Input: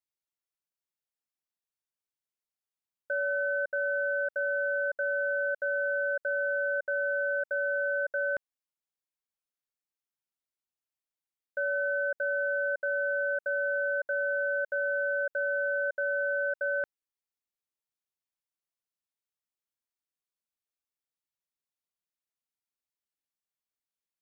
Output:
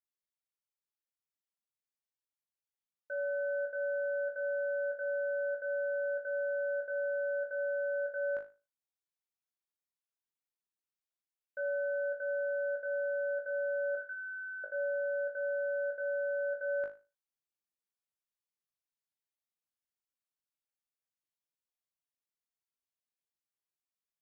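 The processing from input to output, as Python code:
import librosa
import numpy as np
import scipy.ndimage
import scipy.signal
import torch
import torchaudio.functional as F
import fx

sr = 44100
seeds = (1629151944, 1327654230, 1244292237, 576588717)

y = fx.steep_highpass(x, sr, hz=1000.0, slope=96, at=(13.95, 14.64))
y = fx.rider(y, sr, range_db=10, speed_s=0.5)
y = fx.room_flutter(y, sr, wall_m=3.3, rt60_s=0.31)
y = y * 10.0 ** (-9.0 / 20.0)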